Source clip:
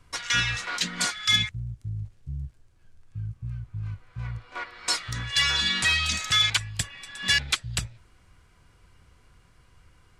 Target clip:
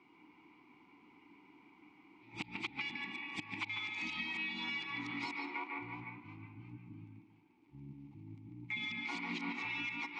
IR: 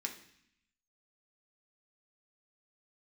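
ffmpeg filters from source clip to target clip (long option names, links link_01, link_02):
-filter_complex "[0:a]areverse,acompressor=threshold=-26dB:ratio=6,asplit=3[link_01][link_02][link_03];[link_01]bandpass=frequency=300:width_type=q:width=8,volume=0dB[link_04];[link_02]bandpass=frequency=870:width_type=q:width=8,volume=-6dB[link_05];[link_03]bandpass=frequency=2240:width_type=q:width=8,volume=-9dB[link_06];[link_04][link_05][link_06]amix=inputs=3:normalize=0,acrossover=split=160 6400:gain=0.1 1 0.224[link_07][link_08][link_09];[link_07][link_08][link_09]amix=inputs=3:normalize=0,asplit=2[link_10][link_11];[1:a]atrim=start_sample=2205,lowpass=2700,adelay=144[link_12];[link_11][link_12]afir=irnorm=-1:irlink=0,volume=-0.5dB[link_13];[link_10][link_13]amix=inputs=2:normalize=0,acrossover=split=130[link_14][link_15];[link_15]acompressor=threshold=-51dB:ratio=6[link_16];[link_14][link_16]amix=inputs=2:normalize=0,volume=13.5dB"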